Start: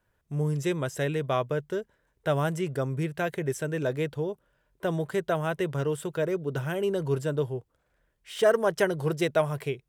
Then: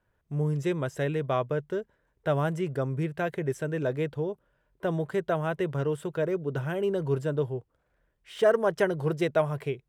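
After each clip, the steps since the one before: high shelf 3600 Hz -9.5 dB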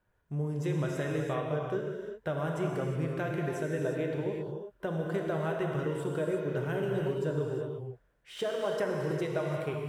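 compressor, threshold -28 dBFS, peak gain reduction 11 dB; non-linear reverb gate 0.39 s flat, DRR -0.5 dB; gain -2.5 dB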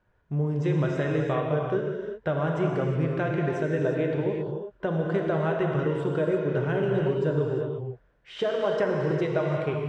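air absorption 140 m; gain +6.5 dB

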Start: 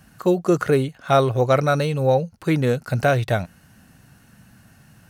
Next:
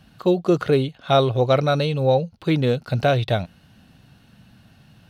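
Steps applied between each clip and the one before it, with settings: EQ curve 700 Hz 0 dB, 1800 Hz -5 dB, 3600 Hz +7 dB, 6900 Hz -10 dB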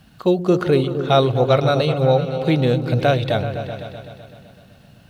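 bit-crush 11-bit; repeats that get brighter 0.127 s, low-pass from 200 Hz, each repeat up 2 oct, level -6 dB; gain +1.5 dB

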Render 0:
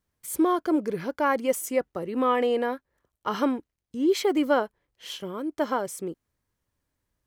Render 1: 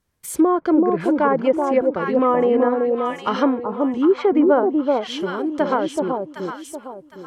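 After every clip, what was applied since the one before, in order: echo with dull and thin repeats by turns 0.38 s, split 970 Hz, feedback 55%, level -2.5 dB; treble ducked by the level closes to 1100 Hz, closed at -18 dBFS; gain +6.5 dB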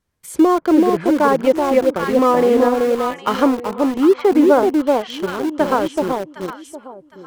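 high shelf 9600 Hz -4.5 dB; in parallel at -4 dB: sample gate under -21 dBFS; on the sum: gain -1 dB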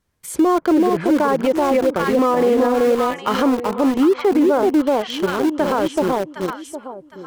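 maximiser +10.5 dB; gain -7.5 dB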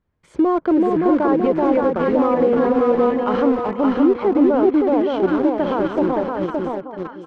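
tape spacing loss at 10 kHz 34 dB; echo 0.569 s -3.5 dB

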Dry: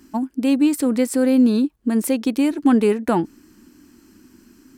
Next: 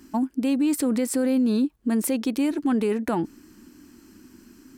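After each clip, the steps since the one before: limiter -16 dBFS, peak gain reduction 10 dB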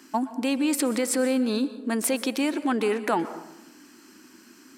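weighting filter A; plate-style reverb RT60 0.87 s, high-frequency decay 0.5×, pre-delay 0.11 s, DRR 13 dB; gain +4.5 dB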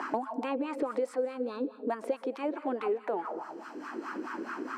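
wah 4.7 Hz 430–1300 Hz, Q 3.9; three-band squash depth 100%; gain +3 dB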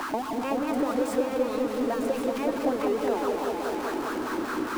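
zero-crossing step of -33.5 dBFS; repeats that get brighter 0.189 s, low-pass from 400 Hz, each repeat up 1 oct, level 0 dB

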